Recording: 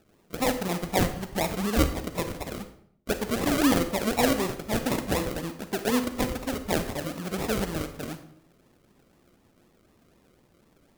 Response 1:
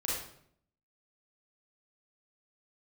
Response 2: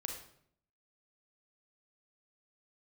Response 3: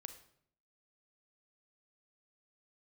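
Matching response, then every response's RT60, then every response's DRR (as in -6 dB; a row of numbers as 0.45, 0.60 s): 3; 0.65, 0.65, 0.65 s; -6.0, 2.0, 8.5 dB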